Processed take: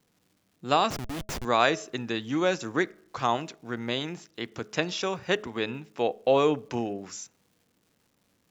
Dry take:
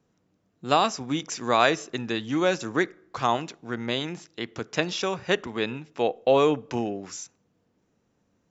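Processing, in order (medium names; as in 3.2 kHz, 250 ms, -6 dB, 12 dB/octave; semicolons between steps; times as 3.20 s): crackle 440 per s -54 dBFS; 0.90–1.45 s: Schmitt trigger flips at -32 dBFS; de-hum 211.5 Hz, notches 3; trim -2 dB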